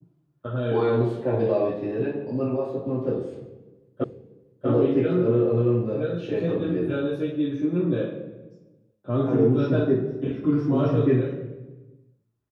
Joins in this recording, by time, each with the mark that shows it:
4.04 repeat of the last 0.64 s

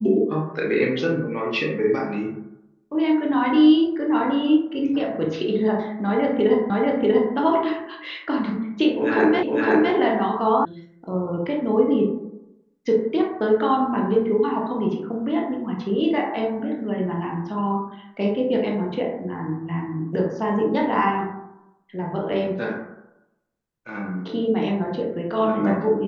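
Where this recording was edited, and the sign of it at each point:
6.7 repeat of the last 0.64 s
9.43 repeat of the last 0.51 s
10.65 sound cut off

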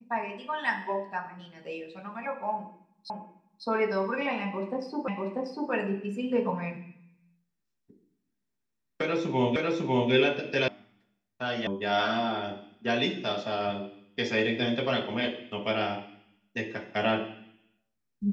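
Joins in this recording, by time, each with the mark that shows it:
3.1 repeat of the last 0.55 s
5.08 repeat of the last 0.64 s
9.56 repeat of the last 0.55 s
10.68 sound cut off
11.67 sound cut off

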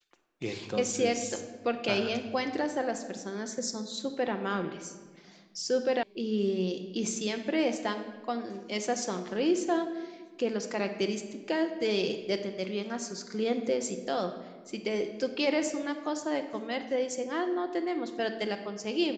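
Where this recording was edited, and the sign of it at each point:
6.03 sound cut off

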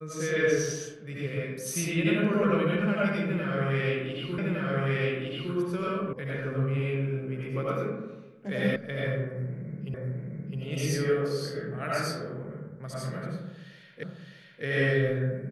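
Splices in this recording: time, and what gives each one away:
4.38 repeat of the last 1.16 s
6.13 sound cut off
8.76 sound cut off
9.94 repeat of the last 0.66 s
14.03 repeat of the last 0.61 s

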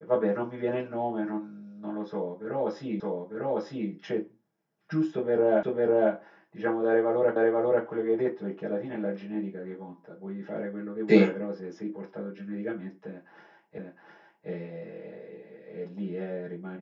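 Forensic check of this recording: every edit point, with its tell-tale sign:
3 repeat of the last 0.9 s
5.63 repeat of the last 0.5 s
7.36 repeat of the last 0.49 s
13.78 repeat of the last 0.71 s

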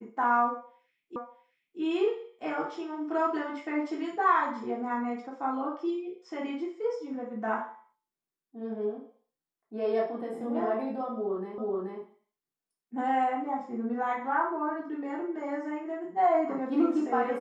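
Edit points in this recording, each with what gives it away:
1.16 repeat of the last 0.64 s
11.58 repeat of the last 0.43 s

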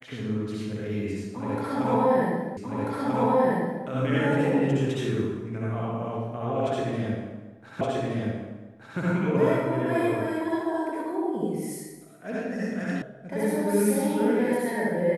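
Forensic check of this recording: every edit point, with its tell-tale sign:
2.57 repeat of the last 1.29 s
7.81 repeat of the last 1.17 s
13.02 sound cut off

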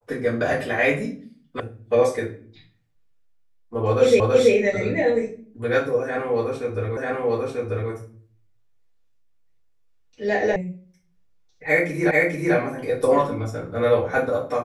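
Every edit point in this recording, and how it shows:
1.6 sound cut off
4.2 repeat of the last 0.33 s
6.97 repeat of the last 0.94 s
10.56 sound cut off
12.11 repeat of the last 0.44 s

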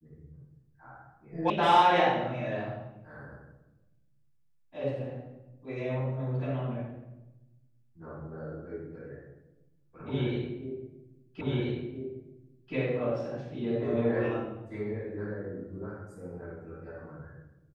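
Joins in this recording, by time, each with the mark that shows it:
1.5 sound cut off
11.41 repeat of the last 1.33 s

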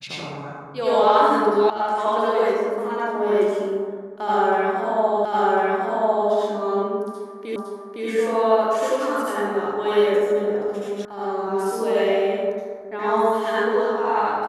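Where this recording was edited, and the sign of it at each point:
1.7 sound cut off
5.25 repeat of the last 1.05 s
7.56 repeat of the last 0.51 s
11.05 sound cut off

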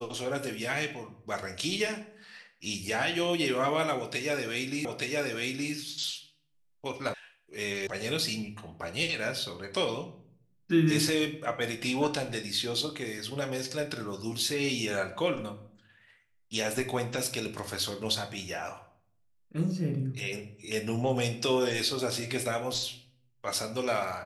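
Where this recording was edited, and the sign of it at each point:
4.85 repeat of the last 0.87 s
7.14 sound cut off
7.87 sound cut off

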